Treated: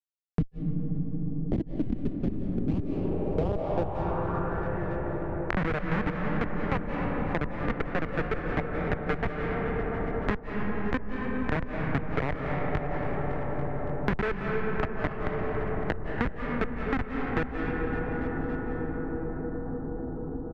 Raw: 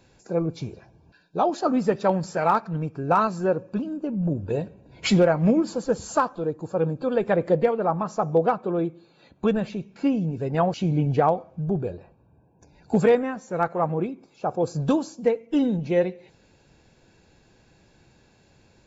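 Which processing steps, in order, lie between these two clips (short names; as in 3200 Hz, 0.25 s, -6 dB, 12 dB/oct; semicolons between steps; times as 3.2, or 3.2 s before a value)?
bin magnitudes rounded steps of 15 dB; steep low-pass 5600 Hz 48 dB/oct; in parallel at -2.5 dB: compressor 20:1, threshold -32 dBFS, peak gain reduction 19 dB; on the sum: added harmonics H 3 -14 dB, 5 -27 dB, 7 -17 dB, 8 -21 dB, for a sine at -8.5 dBFS; Schmitt trigger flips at -17 dBFS; on a send: feedback echo 0.258 s, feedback 53%, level -19 dB; on the sum: digital reverb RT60 4.9 s, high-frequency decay 0.25×, pre-delay 0.12 s, DRR 3 dB; speed mistake 48 kHz file played as 44.1 kHz; low-pass sweep 250 Hz -> 1900 Hz, 2.69–4.82; three-band squash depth 100%; gain +2.5 dB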